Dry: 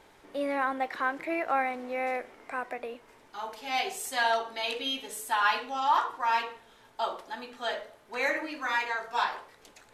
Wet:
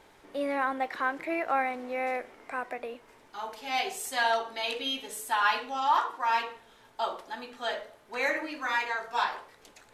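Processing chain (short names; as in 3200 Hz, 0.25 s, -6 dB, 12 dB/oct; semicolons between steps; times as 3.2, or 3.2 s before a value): 5.84–6.28 HPF 65 Hz -> 220 Hz 24 dB/oct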